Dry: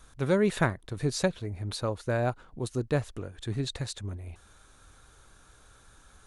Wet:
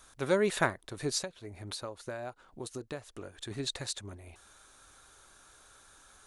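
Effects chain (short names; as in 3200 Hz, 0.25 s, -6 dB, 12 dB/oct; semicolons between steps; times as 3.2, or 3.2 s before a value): tone controls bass -11 dB, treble +3 dB; notch 470 Hz, Q 12; 1.18–3.51 compressor 6:1, threshold -37 dBFS, peak gain reduction 14 dB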